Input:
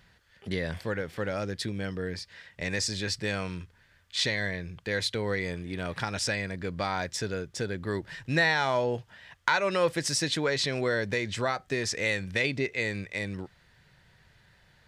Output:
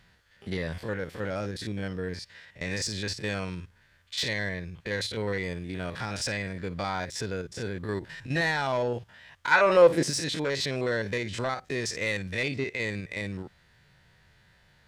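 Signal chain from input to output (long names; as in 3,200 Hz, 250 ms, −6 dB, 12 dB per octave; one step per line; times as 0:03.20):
spectrum averaged block by block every 50 ms
soft clipping −20 dBFS, distortion −19 dB
0:09.51–0:10.09: parametric band 1,600 Hz → 260 Hz +11 dB 2.3 octaves
level +1 dB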